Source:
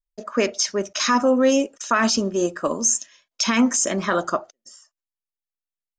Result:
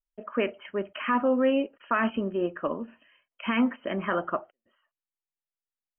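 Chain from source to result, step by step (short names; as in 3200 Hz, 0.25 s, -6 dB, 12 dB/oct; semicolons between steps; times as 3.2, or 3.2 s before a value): brick-wall FIR low-pass 3200 Hz; gain -6 dB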